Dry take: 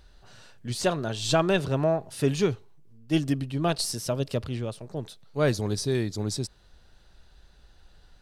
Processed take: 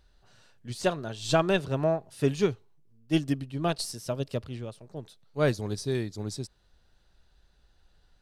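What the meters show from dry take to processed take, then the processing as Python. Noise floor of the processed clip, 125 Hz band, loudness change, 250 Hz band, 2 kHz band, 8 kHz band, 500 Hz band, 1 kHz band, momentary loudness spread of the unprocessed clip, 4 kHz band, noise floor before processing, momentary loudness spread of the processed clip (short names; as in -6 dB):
-64 dBFS, -3.0 dB, -2.0 dB, -2.5 dB, -1.5 dB, -6.0 dB, -1.5 dB, -1.5 dB, 13 LU, -4.0 dB, -56 dBFS, 15 LU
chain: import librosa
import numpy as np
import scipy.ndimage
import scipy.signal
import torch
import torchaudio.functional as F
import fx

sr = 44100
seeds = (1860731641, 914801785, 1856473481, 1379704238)

y = fx.upward_expand(x, sr, threshold_db=-35.0, expansion=1.5)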